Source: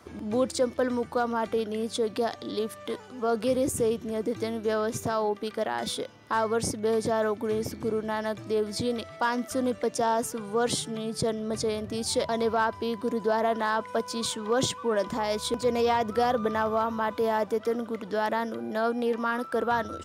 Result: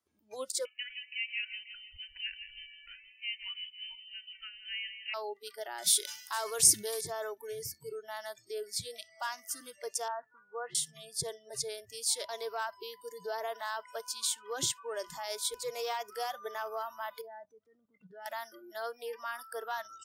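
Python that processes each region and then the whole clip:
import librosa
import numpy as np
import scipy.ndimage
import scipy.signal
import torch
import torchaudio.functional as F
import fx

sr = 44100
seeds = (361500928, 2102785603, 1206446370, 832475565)

y = fx.chain(x, sr, fx.highpass(hz=700.0, slope=24),
    fx.echo_feedback(ms=164, feedback_pct=47, wet_db=-9.0),
    fx.freq_invert(carrier_hz=3500), at=(0.65, 5.14))
y = fx.chain(y, sr, fx.high_shelf(hz=3400.0, db=11.5),
    fx.sustainer(db_per_s=64.0), at=(5.84, 7.01))
y = fx.chain(y, sr, fx.lowpass(hz=1800.0, slope=24),
    fx.tilt_eq(slope=2.0), at=(10.08, 10.75))
y = fx.chain(y, sr, fx.lowpass(hz=2200.0, slope=6),
    fx.low_shelf(hz=270.0, db=11.0),
    fx.level_steps(step_db=17), at=(17.21, 18.26))
y = fx.noise_reduce_blind(y, sr, reduce_db=26)
y = librosa.effects.preemphasis(y, coef=0.8, zi=[0.0])
y = y * 10.0 ** (2.0 / 20.0)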